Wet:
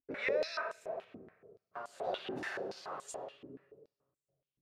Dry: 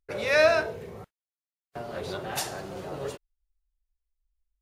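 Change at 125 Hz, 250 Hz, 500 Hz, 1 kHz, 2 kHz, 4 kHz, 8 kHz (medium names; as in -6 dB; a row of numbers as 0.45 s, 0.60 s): -17.0 dB, -7.5 dB, -11.0 dB, -8.5 dB, -11.5 dB, -11.0 dB, -13.5 dB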